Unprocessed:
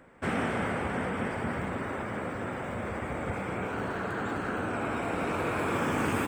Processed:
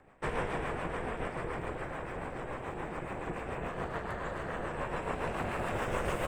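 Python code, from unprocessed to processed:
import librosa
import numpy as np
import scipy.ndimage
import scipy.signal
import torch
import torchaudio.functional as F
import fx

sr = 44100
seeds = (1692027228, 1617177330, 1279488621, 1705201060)

y = fx.rotary(x, sr, hz=7.0)
y = fx.peak_eq(y, sr, hz=820.0, db=4.5, octaves=0.58)
y = y * np.sin(2.0 * np.pi * 250.0 * np.arange(len(y)) / sr)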